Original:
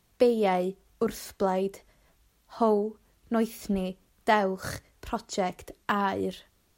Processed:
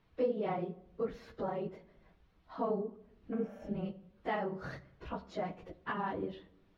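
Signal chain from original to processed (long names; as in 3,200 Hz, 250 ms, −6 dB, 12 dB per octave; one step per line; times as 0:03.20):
random phases in long frames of 50 ms
healed spectral selection 0:03.36–0:03.68, 490–5,300 Hz both
downward compressor 1.5 to 1, threshold −48 dBFS, peak gain reduction 11.5 dB
high-frequency loss of the air 300 metres
rectangular room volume 2,300 cubic metres, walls furnished, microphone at 0.59 metres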